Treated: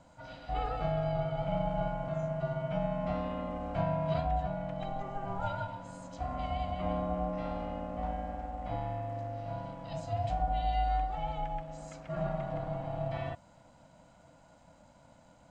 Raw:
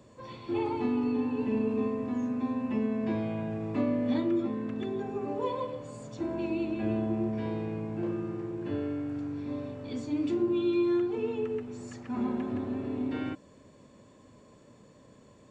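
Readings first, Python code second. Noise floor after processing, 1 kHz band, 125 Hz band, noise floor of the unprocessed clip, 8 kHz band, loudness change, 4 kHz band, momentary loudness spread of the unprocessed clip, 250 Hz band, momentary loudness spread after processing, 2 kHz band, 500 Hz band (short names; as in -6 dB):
-60 dBFS, +7.5 dB, +4.0 dB, -57 dBFS, n/a, -3.5 dB, -0.5 dB, 9 LU, -11.0 dB, 9 LU, -1.0 dB, -3.0 dB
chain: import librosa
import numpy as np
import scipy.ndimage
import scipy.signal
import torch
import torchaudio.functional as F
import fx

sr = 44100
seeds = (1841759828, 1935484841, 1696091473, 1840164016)

y = scipy.signal.sosfilt(scipy.signal.butter(2, 87.0, 'highpass', fs=sr, output='sos'), x)
y = y * np.sin(2.0 * np.pi * 400.0 * np.arange(len(y)) / sr)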